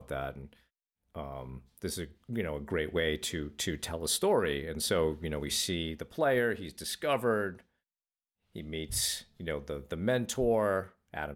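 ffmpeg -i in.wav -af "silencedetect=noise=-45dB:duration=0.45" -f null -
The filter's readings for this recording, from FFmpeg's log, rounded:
silence_start: 0.53
silence_end: 1.15 | silence_duration: 0.61
silence_start: 7.59
silence_end: 8.55 | silence_duration: 0.96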